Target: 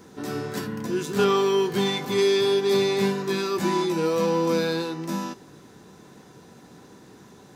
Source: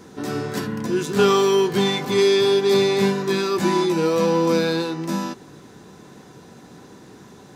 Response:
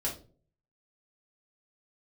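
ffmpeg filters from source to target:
-filter_complex "[0:a]asettb=1/sr,asplit=3[s0][s1][s2];[s0]atrim=end=1.244[s3];[s1]atrim=start=1.24:end=1.67,asetpts=PTS-STARTPTS,afade=t=in:d=0.004:c=qsin,afade=t=out:st=0.426:d=0.004:c=qsin,acrossover=split=4300[s4][s5];[s5]acompressor=threshold=0.0112:ratio=4:attack=1:release=60[s6];[s4][s6]amix=inputs=2:normalize=0[s7];[s2]atrim=start=1.666[s8];[s3][s7]acrossfade=d=0.004:c1=hsin:c2=qsin[s9];[s9][s8]acrossfade=d=0.004:c1=qsin:c2=hsin,asplit=2[s10][s11];[s11]aemphasis=mode=production:type=riaa[s12];[1:a]atrim=start_sample=2205[s13];[s12][s13]afir=irnorm=-1:irlink=0,volume=0.0708[s14];[s10][s14]amix=inputs=2:normalize=0,volume=0.596"

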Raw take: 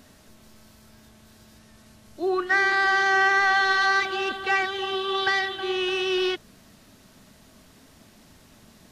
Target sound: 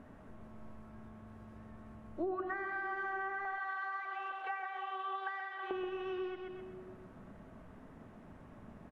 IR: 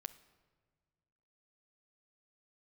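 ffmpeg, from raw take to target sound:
-filter_complex "[0:a]asettb=1/sr,asplit=3[s0][s1][s2];[s0]atrim=end=3.454[s3];[s1]atrim=start=3.45:end=5.71,asetpts=PTS-STARTPTS,afade=t=in:d=0.004:c=qsin,afade=t=out:st=2.256:d=0.004:c=qsin,highpass=f=600:w=0.5412,highpass=f=600:w=1.3066[s4];[s2]atrim=start=5.706[s5];[s3][s4]acrossfade=d=0.004:c1=hsin:c2=qsin[s6];[s6][s5]acrossfade=d=0.004:c1=qsin:c2=hsin,aecho=1:1:127|254|381:0.447|0.125|0.035,acompressor=threshold=0.0224:ratio=12,firequalizer=gain_entry='entry(1100,0);entry(4300,-27);entry(7200,-25)':delay=0.05:min_phase=1[s7];[1:a]atrim=start_sample=2205,asetrate=22491,aresample=44100[s8];[s7][s8]afir=irnorm=-1:irlink=0"

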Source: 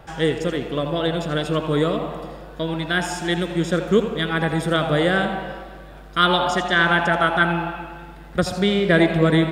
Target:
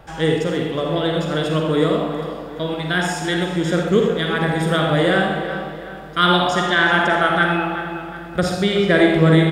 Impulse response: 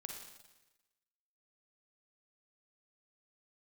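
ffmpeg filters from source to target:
-filter_complex "[0:a]asettb=1/sr,asplit=3[s0][s1][s2];[s0]atrim=end=7.184[s3];[s1]atrim=start=7.18:end=8.87,asetpts=PTS-STARTPTS,afade=t=in:d=0.004:c=qsin,afade=t=out:st=1.686:d=0.004:c=qsin,bandreject=f=1000:w=9.7[s4];[s2]atrim=start=8.866[s5];[s3][s4]acrossfade=d=0.004:c1=hsin:c2=qsin[s6];[s6][s5]acrossfade=d=0.004:c1=qsin:c2=hsin,asplit=2[s7][s8];[s8]adelay=370,lowpass=f=3600:p=1,volume=0.282,asplit=2[s9][s10];[s10]adelay=370,lowpass=f=3600:p=1,volume=0.47,asplit=2[s11][s12];[s12]adelay=370,lowpass=f=3600:p=1,volume=0.47,asplit=2[s13][s14];[s14]adelay=370,lowpass=f=3600:p=1,volume=0.47,asplit=2[s15][s16];[s16]adelay=370,lowpass=f=3600:p=1,volume=0.47[s17];[s7][s9][s11][s13][s15][s17]amix=inputs=6:normalize=0[s18];[1:a]atrim=start_sample=2205,afade=t=out:st=0.2:d=0.01,atrim=end_sample=9261[s19];[s18][s19]afir=irnorm=-1:irlink=0,volume=1.88"

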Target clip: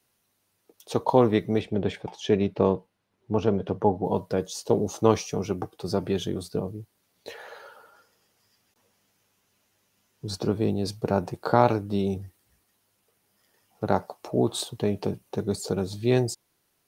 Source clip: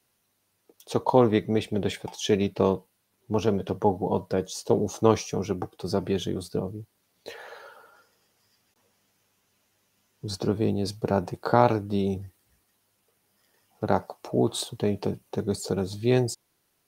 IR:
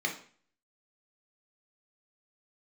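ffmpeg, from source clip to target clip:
-filter_complex "[0:a]asettb=1/sr,asplit=3[s0][s1][s2];[s0]atrim=end=1.614[s3];[s1]atrim=start=1.61:end=4.05,asetpts=PTS-STARTPTS,afade=t=in:d=0.004:c=qsin,afade=t=out:st=2.436:d=0.004:c=qsin,aemphasis=mode=reproduction:type=75fm[s4];[s2]atrim=start=4.046[s5];[s3][s4]acrossfade=d=0.004:c1=hsin:c2=qsin[s6];[s6][s5]acrossfade=d=0.004:c1=qsin:c2=hsin"

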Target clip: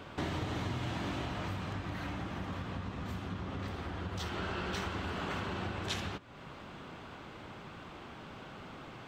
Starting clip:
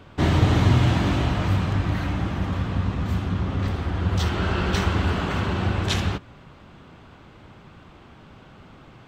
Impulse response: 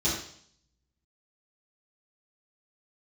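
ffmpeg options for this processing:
-af "acompressor=threshold=0.0112:ratio=2.5,lowshelf=f=160:g=-10,volume=1.26"

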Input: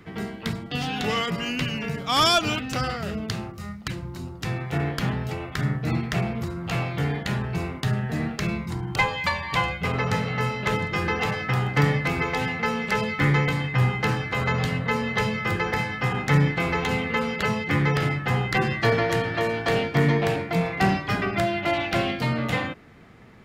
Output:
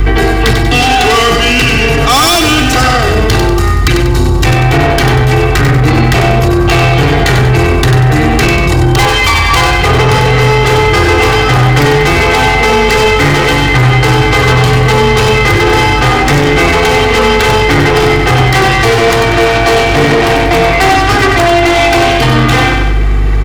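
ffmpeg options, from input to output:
-filter_complex "[0:a]aeval=exprs='val(0)+0.0158*(sin(2*PI*50*n/s)+sin(2*PI*2*50*n/s)/2+sin(2*PI*3*50*n/s)/3+sin(2*PI*4*50*n/s)/4+sin(2*PI*5*50*n/s)/5)':c=same,acrossover=split=390|560|6500[s0][s1][s2][s3];[s2]volume=15.8,asoftclip=hard,volume=0.0631[s4];[s0][s1][s4][s3]amix=inputs=4:normalize=0,aecho=1:1:2.6:0.94,asoftclip=type=tanh:threshold=0.0501,aecho=1:1:95|190|285|380|475:0.531|0.218|0.0892|0.0366|0.015,alimiter=level_in=28.2:limit=0.891:release=50:level=0:latency=1,volume=0.891"

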